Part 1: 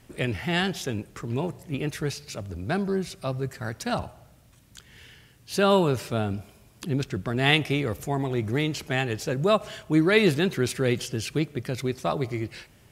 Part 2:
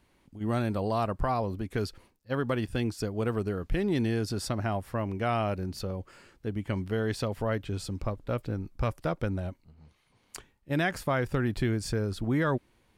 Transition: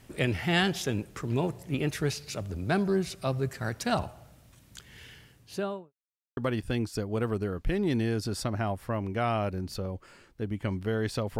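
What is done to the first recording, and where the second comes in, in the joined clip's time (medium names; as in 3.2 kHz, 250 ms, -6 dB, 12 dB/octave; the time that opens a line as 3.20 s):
part 1
5.16–5.93 s: studio fade out
5.93–6.37 s: mute
6.37 s: go over to part 2 from 2.42 s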